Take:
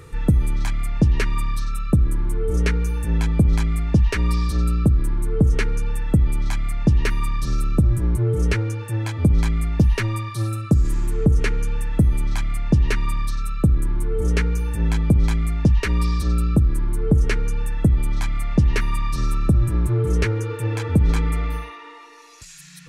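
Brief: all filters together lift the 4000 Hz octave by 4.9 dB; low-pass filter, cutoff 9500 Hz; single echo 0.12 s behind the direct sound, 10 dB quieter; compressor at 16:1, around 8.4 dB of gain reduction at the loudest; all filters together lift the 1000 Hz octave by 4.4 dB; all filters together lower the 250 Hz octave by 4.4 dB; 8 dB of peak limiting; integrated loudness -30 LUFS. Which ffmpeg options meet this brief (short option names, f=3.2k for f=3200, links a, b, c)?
-af "lowpass=9.5k,equalizer=f=250:t=o:g=-7.5,equalizer=f=1k:t=o:g=5.5,equalizer=f=4k:t=o:g=6,acompressor=threshold=-21dB:ratio=16,alimiter=limit=-20.5dB:level=0:latency=1,aecho=1:1:120:0.316"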